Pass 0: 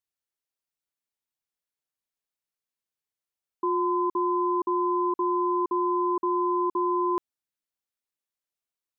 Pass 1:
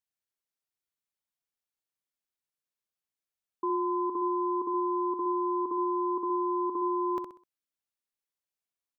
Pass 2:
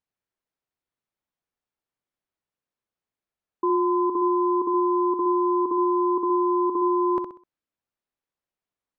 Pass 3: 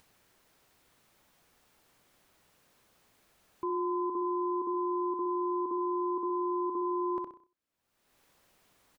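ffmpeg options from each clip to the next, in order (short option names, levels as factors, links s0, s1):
-af "aecho=1:1:64|128|192|256:0.473|0.161|0.0547|0.0186,volume=0.631"
-af "lowpass=f=1200:p=1,volume=2.66"
-filter_complex "[0:a]alimiter=limit=0.106:level=0:latency=1:release=14,acompressor=mode=upward:threshold=0.0158:ratio=2.5,asplit=2[s0][s1];[s1]adelay=93.29,volume=0.158,highshelf=f=4000:g=-2.1[s2];[s0][s2]amix=inputs=2:normalize=0,volume=0.447"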